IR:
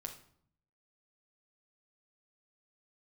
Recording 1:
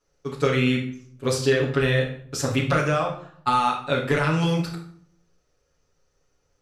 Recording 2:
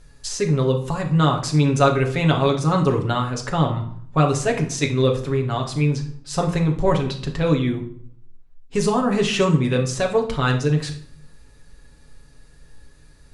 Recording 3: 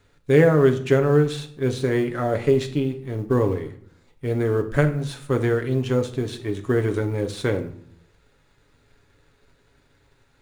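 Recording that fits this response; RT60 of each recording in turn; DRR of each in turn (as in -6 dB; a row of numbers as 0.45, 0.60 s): 2; 0.60, 0.60, 0.65 s; -7.0, 1.0, 5.5 dB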